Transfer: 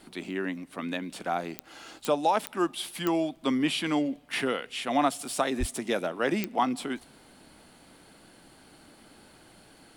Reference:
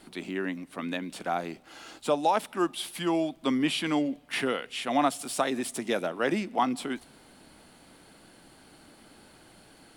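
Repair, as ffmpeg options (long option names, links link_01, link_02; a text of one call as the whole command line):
ffmpeg -i in.wav -filter_complex "[0:a]adeclick=threshold=4,asplit=3[link_01][link_02][link_03];[link_01]afade=type=out:start_time=5.59:duration=0.02[link_04];[link_02]highpass=frequency=140:width=0.5412,highpass=frequency=140:width=1.3066,afade=type=in:start_time=5.59:duration=0.02,afade=type=out:start_time=5.71:duration=0.02[link_05];[link_03]afade=type=in:start_time=5.71:duration=0.02[link_06];[link_04][link_05][link_06]amix=inputs=3:normalize=0" out.wav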